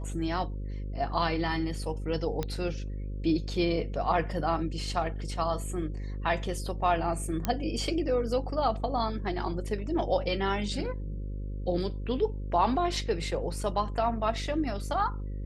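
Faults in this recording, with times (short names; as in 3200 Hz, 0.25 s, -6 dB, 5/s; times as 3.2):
buzz 50 Hz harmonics 11 -35 dBFS
2.43 pop -17 dBFS
7.45 pop -13 dBFS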